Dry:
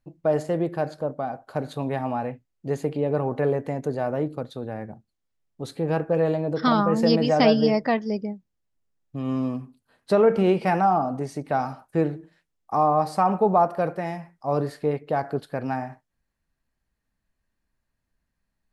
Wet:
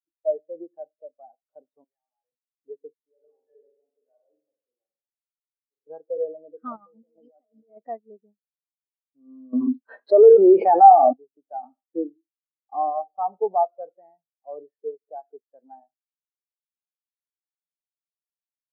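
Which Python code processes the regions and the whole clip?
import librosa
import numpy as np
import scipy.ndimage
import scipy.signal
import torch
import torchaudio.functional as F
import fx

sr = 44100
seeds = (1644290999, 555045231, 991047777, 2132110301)

y = fx.chain(x, sr, fx.differentiator(),
    fx.env_flatten(amount_pct=100), at=(1.84, 2.32))
y = fx.chain(y, sr, fx.pre_emphasis(coefficient=0.8),
    fx.dispersion(late='lows', ms=105.0, hz=2300.0),
    fx.room_flutter(wall_m=8.0, rt60_s=1.2), at=(2.93, 5.87))
y = fx.chain(y, sr, fx.halfwave_gain(db=-3.0),
    fx.tube_stage(drive_db=14.0, bias=0.7),
    fx.over_compress(threshold_db=-29.0, ratio=-0.5), at=(6.76, 7.77))
y = fx.chain(y, sr, fx.highpass(hz=230.0, slope=12),
    fx.env_flatten(amount_pct=100), at=(9.53, 11.13))
y = fx.chain(y, sr, fx.highpass(hz=51.0, slope=12),
    fx.peak_eq(hz=260.0, db=6.5, octaves=0.88),
    fx.band_squash(depth_pct=40), at=(11.63, 12.9))
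y = scipy.signal.sosfilt(scipy.signal.butter(2, 320.0, 'highpass', fs=sr, output='sos'), y)
y = fx.high_shelf(y, sr, hz=5100.0, db=-11.5)
y = fx.spectral_expand(y, sr, expansion=2.5)
y = y * librosa.db_to_amplitude(3.0)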